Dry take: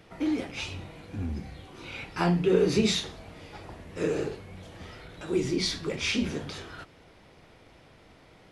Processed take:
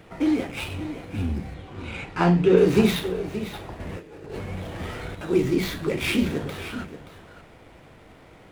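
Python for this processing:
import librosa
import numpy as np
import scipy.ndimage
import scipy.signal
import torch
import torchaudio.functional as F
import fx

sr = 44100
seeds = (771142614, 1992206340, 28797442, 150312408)

y = scipy.signal.medfilt(x, 9)
y = fx.air_absorb(y, sr, metres=63.0, at=(1.54, 2.58))
y = fx.over_compress(y, sr, threshold_db=-42.0, ratio=-1.0, at=(3.8, 5.15))
y = y + 10.0 ** (-12.5 / 20.0) * np.pad(y, (int(577 * sr / 1000.0), 0))[:len(y)]
y = F.gain(torch.from_numpy(y), 6.0).numpy()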